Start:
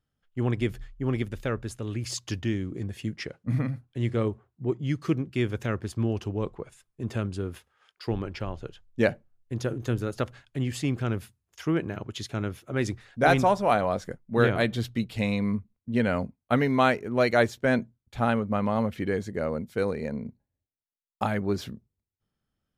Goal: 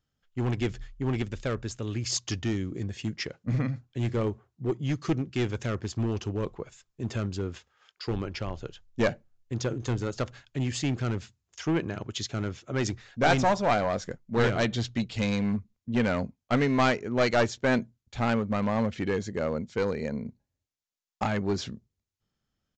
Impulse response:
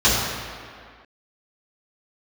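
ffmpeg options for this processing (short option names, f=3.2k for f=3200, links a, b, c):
-af "highshelf=f=4.7k:g=9,aresample=16000,aeval=exprs='clip(val(0),-1,0.0794)':c=same,aresample=44100"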